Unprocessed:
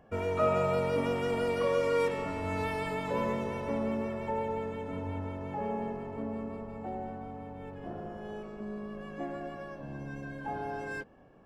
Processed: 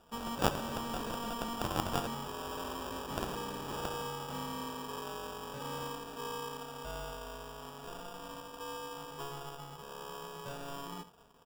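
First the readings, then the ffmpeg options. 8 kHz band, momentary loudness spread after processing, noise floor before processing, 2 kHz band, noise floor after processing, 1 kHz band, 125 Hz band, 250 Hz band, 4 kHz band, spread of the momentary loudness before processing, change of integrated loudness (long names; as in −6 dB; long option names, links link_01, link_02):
can't be measured, 11 LU, −45 dBFS, −5.5 dB, −50 dBFS, −2.5 dB, −6.0 dB, −6.5 dB, +6.0 dB, 13 LU, −6.0 dB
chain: -filter_complex "[0:a]aecho=1:1:4:0.64,asplit=2[link_01][link_02];[link_02]aecho=0:1:72:0.188[link_03];[link_01][link_03]amix=inputs=2:normalize=0,aeval=exprs='val(0)*sin(2*PI*700*n/s)':channel_layout=same,acrusher=samples=21:mix=1:aa=0.000001,aeval=exprs='0.15*(cos(1*acos(clip(val(0)/0.15,-1,1)))-cos(1*PI/2))+0.075*(cos(3*acos(clip(val(0)/0.15,-1,1)))-cos(3*PI/2))':channel_layout=same,volume=3dB"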